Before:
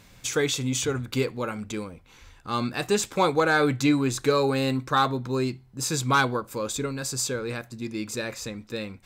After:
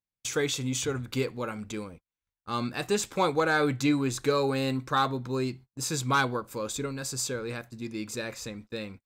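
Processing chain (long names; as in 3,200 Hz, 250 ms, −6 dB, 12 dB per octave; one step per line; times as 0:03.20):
noise gate −42 dBFS, range −42 dB
level −3.5 dB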